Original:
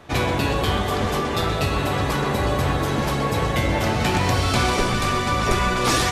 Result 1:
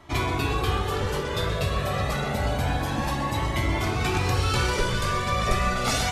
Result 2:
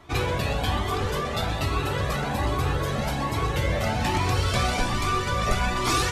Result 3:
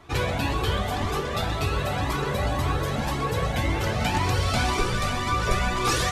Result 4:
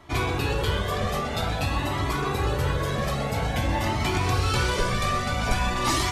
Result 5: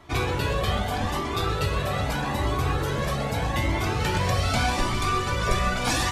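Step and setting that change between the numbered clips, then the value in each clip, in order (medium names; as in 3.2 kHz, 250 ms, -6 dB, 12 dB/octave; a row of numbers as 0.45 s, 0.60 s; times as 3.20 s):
Shepard-style flanger, rate: 0.28 Hz, 1.2 Hz, 1.9 Hz, 0.5 Hz, 0.81 Hz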